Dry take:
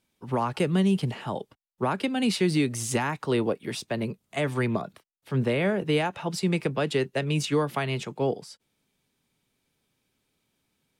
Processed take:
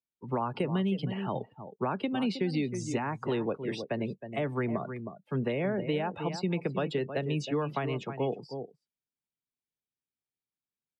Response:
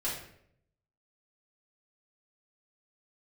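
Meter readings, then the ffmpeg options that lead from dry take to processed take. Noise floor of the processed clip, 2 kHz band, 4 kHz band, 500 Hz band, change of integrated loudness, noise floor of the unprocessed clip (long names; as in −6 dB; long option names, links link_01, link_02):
below −85 dBFS, −7.5 dB, −8.5 dB, −4.5 dB, −5.0 dB, −77 dBFS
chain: -filter_complex "[0:a]asplit=2[link_01][link_02];[link_02]adelay=314.9,volume=-11dB,highshelf=frequency=4000:gain=-7.08[link_03];[link_01][link_03]amix=inputs=2:normalize=0,acrossover=split=140|1200|6800[link_04][link_05][link_06][link_07];[link_04]acompressor=threshold=-43dB:ratio=4[link_08];[link_05]acompressor=threshold=-26dB:ratio=4[link_09];[link_06]acompressor=threshold=-38dB:ratio=4[link_10];[link_07]acompressor=threshold=-54dB:ratio=4[link_11];[link_08][link_09][link_10][link_11]amix=inputs=4:normalize=0,afftdn=noise_reduction=26:noise_floor=-42,volume=-1.5dB"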